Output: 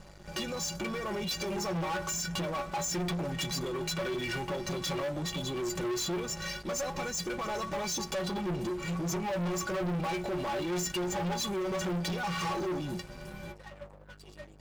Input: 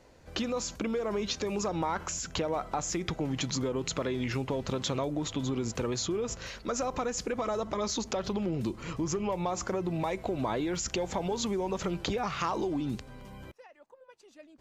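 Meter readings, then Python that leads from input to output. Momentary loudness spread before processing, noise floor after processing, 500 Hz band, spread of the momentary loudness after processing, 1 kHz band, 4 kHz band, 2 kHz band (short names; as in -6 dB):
3 LU, -52 dBFS, -2.0 dB, 8 LU, -1.0 dB, +1.5 dB, +3.0 dB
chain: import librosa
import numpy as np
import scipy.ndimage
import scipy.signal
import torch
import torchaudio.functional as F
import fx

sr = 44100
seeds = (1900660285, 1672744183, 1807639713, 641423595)

y = fx.add_hum(x, sr, base_hz=50, snr_db=14)
y = fx.stiff_resonator(y, sr, f0_hz=170.0, decay_s=0.32, stiffness=0.03)
y = fx.leveller(y, sr, passes=5)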